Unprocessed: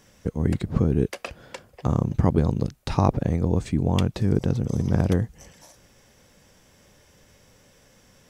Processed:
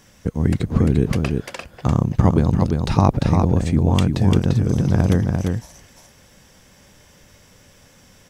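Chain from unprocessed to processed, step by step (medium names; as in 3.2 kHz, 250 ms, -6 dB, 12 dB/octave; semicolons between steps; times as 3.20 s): peaking EQ 460 Hz -3.5 dB 0.95 oct; on a send: delay 346 ms -4.5 dB; on the sum: trim +5 dB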